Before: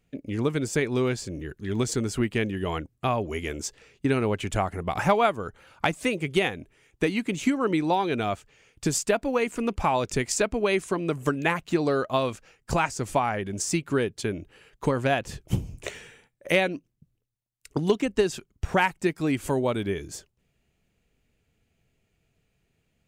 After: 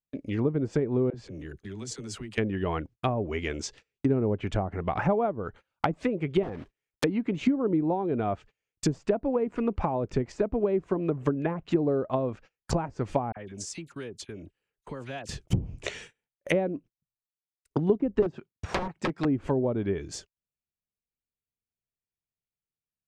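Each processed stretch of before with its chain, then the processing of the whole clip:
0:01.10–0:02.38: downward compressor, threshold −36 dBFS + all-pass dispersion lows, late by 44 ms, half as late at 350 Hz
0:06.43–0:07.04: one scale factor per block 3 bits + wrap-around overflow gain 20.5 dB
0:13.32–0:15.29: downward compressor 2 to 1, threshold −46 dBFS + all-pass dispersion lows, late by 47 ms, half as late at 1,700 Hz
0:18.22–0:19.25: high-pass filter 110 Hz + wrap-around overflow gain 19 dB
whole clip: noise gate −45 dBFS, range −30 dB; treble cut that deepens with the level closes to 560 Hz, closed at −21 dBFS; dynamic equaliser 5,300 Hz, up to +5 dB, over −52 dBFS, Q 0.72

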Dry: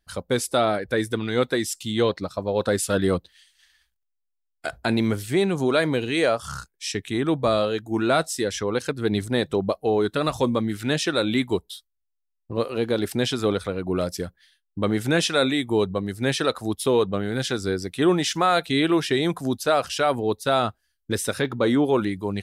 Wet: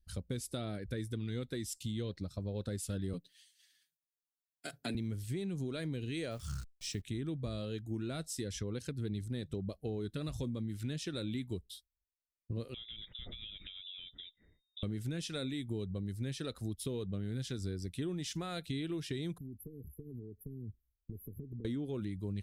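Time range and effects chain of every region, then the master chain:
0:03.13–0:04.95: high-pass filter 170 Hz 24 dB per octave + high-shelf EQ 6,500 Hz +4.5 dB + comb filter 7.1 ms, depth 78%
0:06.31–0:07.02: hold until the input has moved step −41.5 dBFS + parametric band 11,000 Hz −5.5 dB 0.32 octaves
0:12.74–0:14.83: downward compressor 12 to 1, threshold −32 dBFS + voice inversion scrambler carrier 3,700 Hz
0:19.38–0:21.65: linear-phase brick-wall band-stop 480–11,000 Hz + downward compressor 12 to 1, threshold −35 dBFS
whole clip: guitar amp tone stack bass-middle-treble 10-0-1; downward compressor, threshold −46 dBFS; level +11 dB

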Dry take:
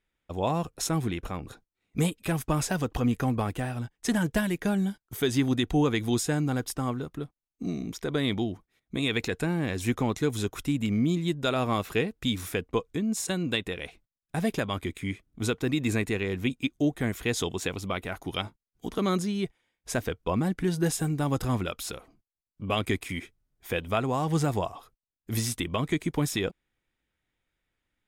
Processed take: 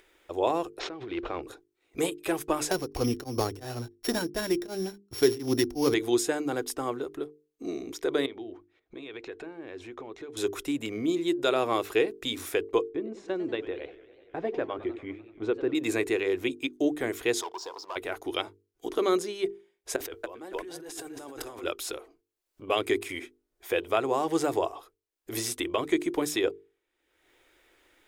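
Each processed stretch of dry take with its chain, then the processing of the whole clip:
0:00.79–0:01.42: variable-slope delta modulation 64 kbit/s + low-pass filter 4,000 Hz 24 dB per octave + compressor whose output falls as the input rises −34 dBFS
0:02.71–0:05.94: samples sorted by size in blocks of 8 samples + bass and treble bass +11 dB, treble +2 dB + tremolo along a rectified sine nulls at 2.8 Hz
0:08.26–0:10.37: notch filter 2,000 Hz, Q 27 + downward compressor 10 to 1, threshold −36 dBFS + low-pass filter 3,200 Hz
0:12.89–0:15.75: head-to-tape spacing loss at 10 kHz 39 dB + feedback echo with a swinging delay time 97 ms, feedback 66%, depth 210 cents, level −16 dB
0:17.41–0:17.96: pair of resonant band-passes 2,200 Hz, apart 2.4 octaves + high-frequency loss of the air 72 metres + leveller curve on the samples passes 3
0:19.96–0:21.64: parametric band 140 Hz −9 dB 1.5 octaves + echo with shifted repeats 274 ms, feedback 34%, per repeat −31 Hz, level −11.5 dB + compressor whose output falls as the input rises −41 dBFS
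whole clip: low shelf with overshoot 260 Hz −10.5 dB, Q 3; mains-hum notches 50/100/150/200/250/300/350/400/450 Hz; upward compression, threshold −47 dBFS

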